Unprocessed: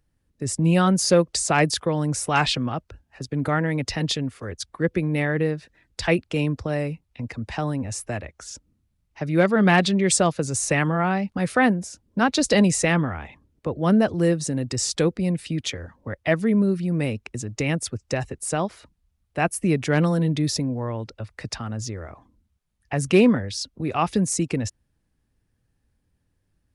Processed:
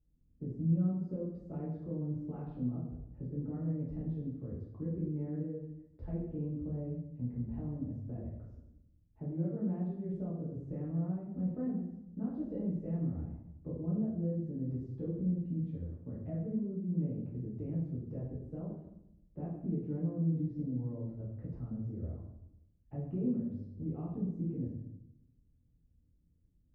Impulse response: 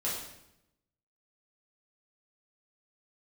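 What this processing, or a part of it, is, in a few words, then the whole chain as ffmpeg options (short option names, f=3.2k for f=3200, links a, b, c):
television next door: -filter_complex "[0:a]acompressor=threshold=-34dB:ratio=3,lowpass=270[a];[1:a]atrim=start_sample=2205[b];[a][b]afir=irnorm=-1:irlink=0,asettb=1/sr,asplit=3[c][d][e];[c]atrim=end=13.234[f];[d]atrim=start=13.23:end=13.71,asetpts=PTS-STARTPTS,afade=t=in:d=0.004:c=qsin,afade=t=out:st=0.476:d=0.004:c=qsin,lowpass=2.1k[g];[e]atrim=start=13.706[h];[f][g]acrossfade=d=0.004:c1=hsin:c2=qsin[i];[i][h]acrossfade=d=0.004:c1=qsin:c2=hsin,volume=-5dB"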